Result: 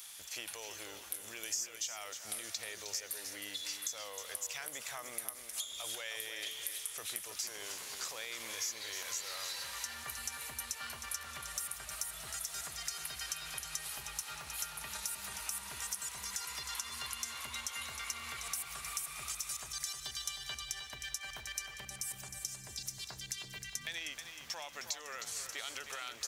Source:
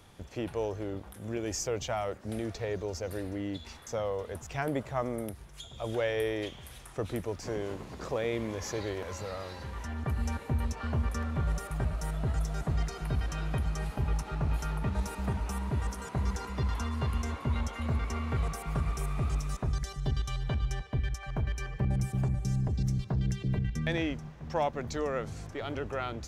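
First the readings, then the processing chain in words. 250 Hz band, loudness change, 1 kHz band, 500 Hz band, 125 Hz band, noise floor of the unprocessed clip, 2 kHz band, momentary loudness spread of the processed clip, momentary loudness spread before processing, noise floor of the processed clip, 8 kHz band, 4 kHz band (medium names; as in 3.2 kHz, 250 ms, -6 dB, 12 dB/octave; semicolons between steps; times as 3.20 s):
-24.5 dB, -6.0 dB, -9.0 dB, -19.0 dB, -28.0 dB, -48 dBFS, -1.5 dB, 4 LU, 7 LU, -51 dBFS, +8.5 dB, +5.5 dB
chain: peak limiter -26 dBFS, peak gain reduction 7 dB; pre-emphasis filter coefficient 0.97; compression, threshold -53 dBFS, peak gain reduction 17 dB; tilt shelf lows -6 dB, about 750 Hz; on a send: feedback delay 312 ms, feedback 41%, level -8.5 dB; on the sum: trim +11 dB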